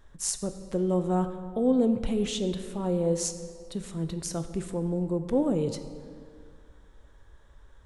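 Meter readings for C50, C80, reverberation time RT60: 10.0 dB, 11.0 dB, 2.3 s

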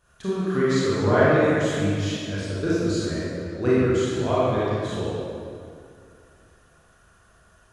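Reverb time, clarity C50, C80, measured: 2.4 s, -6.0 dB, -2.5 dB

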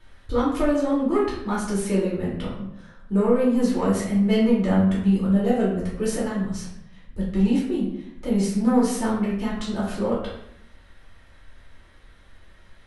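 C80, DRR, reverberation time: 6.5 dB, -7.5 dB, 0.75 s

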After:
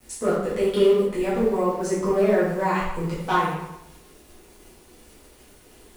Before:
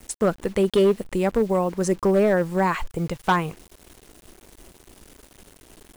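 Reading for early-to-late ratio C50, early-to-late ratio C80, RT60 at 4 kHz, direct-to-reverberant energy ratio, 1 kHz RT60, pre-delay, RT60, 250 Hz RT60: 0.5 dB, 4.0 dB, 0.70 s, -10.5 dB, 0.90 s, 5 ms, 0.90 s, 0.85 s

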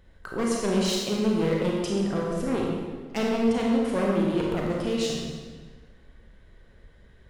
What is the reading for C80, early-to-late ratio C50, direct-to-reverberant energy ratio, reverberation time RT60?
1.5 dB, -0.5 dB, -2.5 dB, 1.5 s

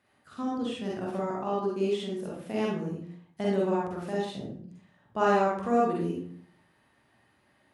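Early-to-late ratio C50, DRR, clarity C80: -0.5 dB, -5.0 dB, 5.0 dB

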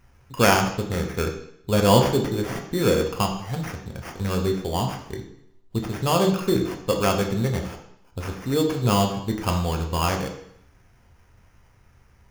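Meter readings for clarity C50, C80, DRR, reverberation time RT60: 7.5 dB, 10.5 dB, 2.5 dB, 0.70 s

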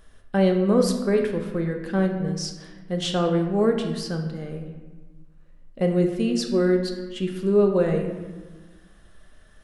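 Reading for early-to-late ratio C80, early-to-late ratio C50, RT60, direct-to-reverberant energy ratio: 8.0 dB, 6.5 dB, 1.4 s, 3.0 dB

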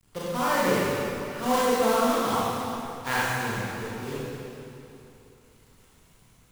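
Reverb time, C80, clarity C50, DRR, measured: 2.9 s, -3.5 dB, -6.0 dB, -9.5 dB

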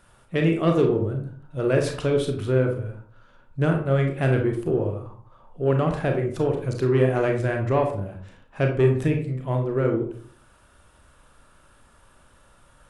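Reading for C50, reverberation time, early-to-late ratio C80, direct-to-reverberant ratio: 7.0 dB, 0.50 s, 11.0 dB, 2.5 dB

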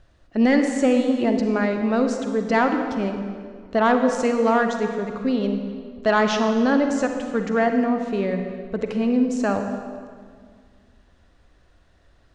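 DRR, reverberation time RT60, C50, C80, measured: 5.0 dB, 2.0 s, 5.5 dB, 7.0 dB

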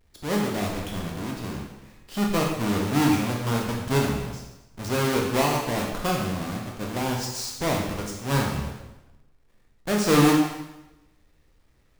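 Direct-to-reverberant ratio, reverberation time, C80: -1.5 dB, 1.0 s, 5.5 dB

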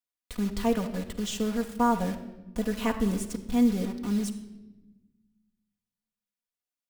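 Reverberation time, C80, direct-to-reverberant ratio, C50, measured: 1.1 s, 12.5 dB, 2.0 dB, 10.5 dB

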